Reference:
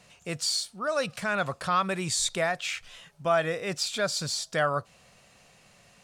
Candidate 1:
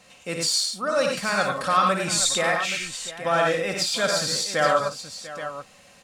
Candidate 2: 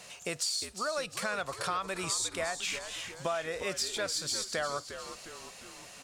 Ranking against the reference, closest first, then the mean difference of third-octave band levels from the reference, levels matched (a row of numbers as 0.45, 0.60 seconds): 1, 2; 7.0, 9.5 decibels